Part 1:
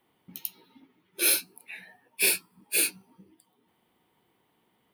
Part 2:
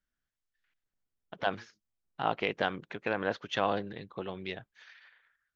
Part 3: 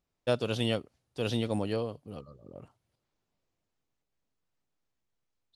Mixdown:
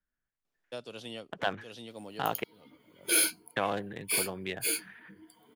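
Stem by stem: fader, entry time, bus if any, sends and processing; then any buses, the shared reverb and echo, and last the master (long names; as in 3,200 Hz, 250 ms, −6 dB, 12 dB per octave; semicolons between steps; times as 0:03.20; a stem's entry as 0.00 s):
+0.5 dB, 1.90 s, no send, EQ curve with evenly spaced ripples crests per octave 1.8, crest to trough 12 dB; automatic ducking −7 dB, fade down 0.25 s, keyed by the second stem
+1.0 dB, 0.00 s, muted 0:02.44–0:03.56, no send, adaptive Wiener filter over 9 samples; noise gate −60 dBFS, range −14 dB; parametric band 1,700 Hz +3.5 dB 0.23 octaves
−15.5 dB, 0.45 s, no send, Bessel high-pass filter 220 Hz, order 2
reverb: not used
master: multiband upward and downward compressor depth 40%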